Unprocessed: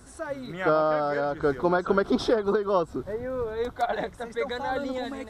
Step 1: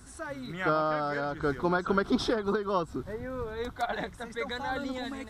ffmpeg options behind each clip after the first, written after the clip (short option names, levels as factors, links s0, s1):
-af "equalizer=f=540:t=o:w=1.3:g=-7.5"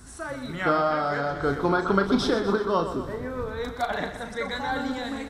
-filter_complex "[0:a]asplit=2[s0][s1];[s1]adelay=36,volume=0.398[s2];[s0][s2]amix=inputs=2:normalize=0,asplit=2[s3][s4];[s4]aecho=0:1:124|248|372|496|620|744|868:0.299|0.17|0.097|0.0553|0.0315|0.018|0.0102[s5];[s3][s5]amix=inputs=2:normalize=0,volume=1.5"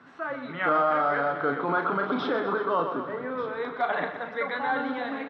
-af "alimiter=limit=0.141:level=0:latency=1:release=15,highpass=f=180:w=0.5412,highpass=f=180:w=1.3066,equalizer=f=210:t=q:w=4:g=-10,equalizer=f=370:t=q:w=4:g=-6,equalizer=f=1200:t=q:w=4:g=3,lowpass=f=3000:w=0.5412,lowpass=f=3000:w=1.3066,aecho=1:1:1190:0.15,volume=1.19"